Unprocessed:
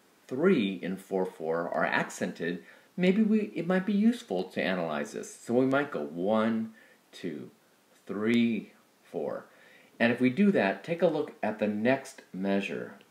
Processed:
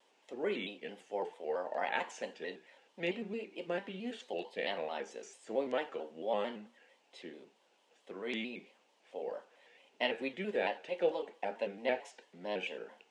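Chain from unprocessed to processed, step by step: speaker cabinet 380–8200 Hz, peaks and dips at 510 Hz +5 dB, 870 Hz +8 dB, 1300 Hz -7 dB, 2900 Hz +10 dB; shaped vibrato square 4.5 Hz, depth 100 cents; gain -8.5 dB

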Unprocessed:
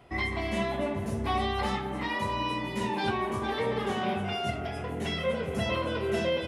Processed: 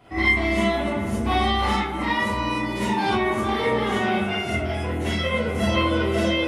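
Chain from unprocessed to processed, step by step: non-linear reverb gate 80 ms rising, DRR -7.5 dB

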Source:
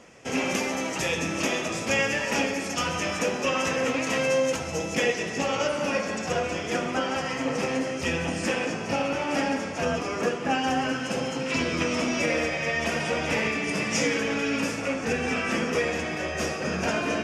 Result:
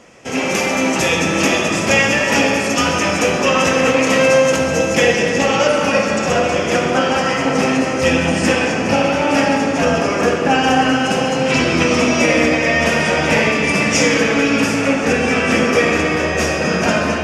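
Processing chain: AGC gain up to 4.5 dB; on a send: reverb RT60 3.7 s, pre-delay 10 ms, DRR 3.5 dB; on the sum: gain +5.5 dB

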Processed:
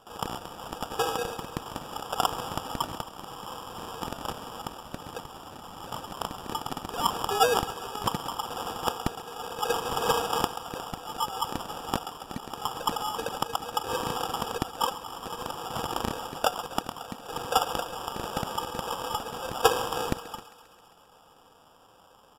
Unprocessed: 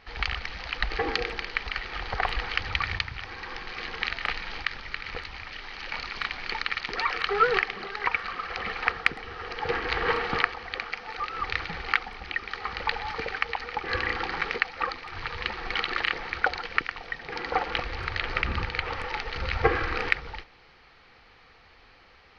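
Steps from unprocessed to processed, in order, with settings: HPF 260 Hz 24 dB/oct; band shelf 760 Hz +10.5 dB; sample-rate reducer 2100 Hz, jitter 0%; on a send: thinning echo 0.133 s, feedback 70%, level -16.5 dB; on the sum: downsampling 32000 Hz; gain -7 dB

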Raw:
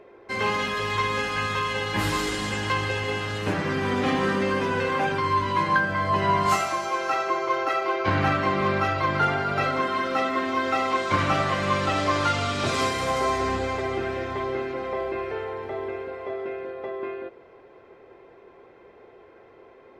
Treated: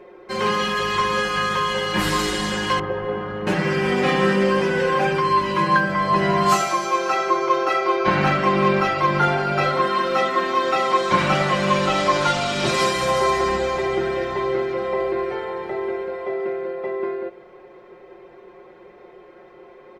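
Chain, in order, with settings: 2.79–3.47 LPF 1200 Hz 12 dB/oct; comb 5.5 ms, depth 99%; gain +2 dB

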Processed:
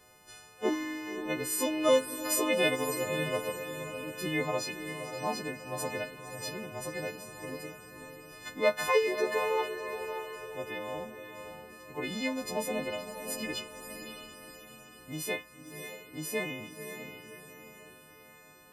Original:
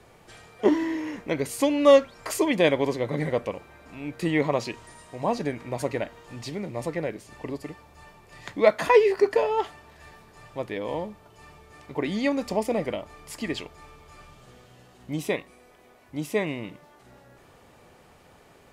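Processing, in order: frequency quantiser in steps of 3 st; diffused feedback echo 0.562 s, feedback 46%, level -8 dB; gain -8.5 dB

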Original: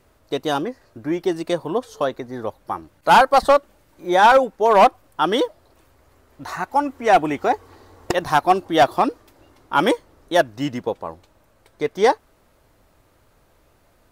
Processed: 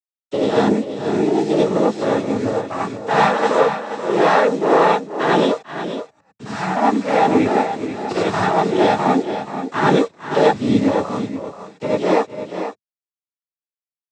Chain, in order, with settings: nonlinear frequency compression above 3100 Hz 1.5:1; low shelf 320 Hz +10.5 dB; compressor, threshold -14 dBFS, peak gain reduction 8 dB; tube stage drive 14 dB, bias 0.65; bit-crush 7-bit; noise vocoder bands 12; on a send: tapped delay 0.448/0.482 s -18.5/-10 dB; on the sum: non-linear reverb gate 0.12 s rising, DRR -6.5 dB

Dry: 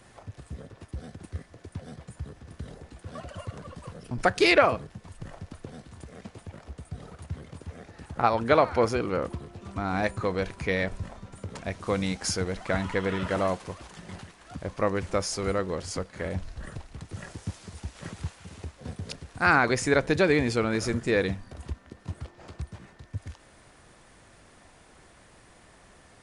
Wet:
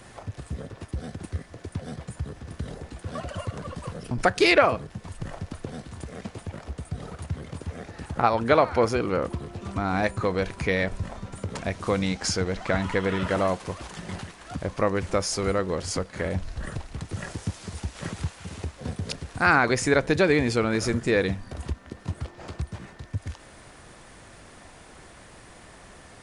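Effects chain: 11.99–12.82 LPF 7800 Hz 12 dB/oct; in parallel at +1.5 dB: compressor, threshold -35 dBFS, peak gain reduction 19.5 dB

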